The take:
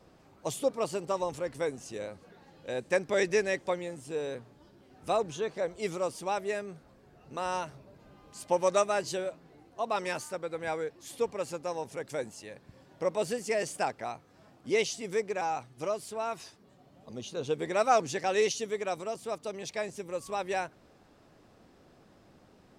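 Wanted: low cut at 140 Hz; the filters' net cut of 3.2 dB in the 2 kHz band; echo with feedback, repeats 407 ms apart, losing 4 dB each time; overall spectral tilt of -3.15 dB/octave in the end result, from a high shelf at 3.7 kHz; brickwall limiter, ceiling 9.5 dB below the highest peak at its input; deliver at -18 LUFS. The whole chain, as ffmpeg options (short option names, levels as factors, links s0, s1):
-af "highpass=140,equalizer=f=2000:t=o:g=-5,highshelf=f=3700:g=3.5,alimiter=limit=0.075:level=0:latency=1,aecho=1:1:407|814|1221|1628|2035|2442|2849|3256|3663:0.631|0.398|0.25|0.158|0.0994|0.0626|0.0394|0.0249|0.0157,volume=6.31"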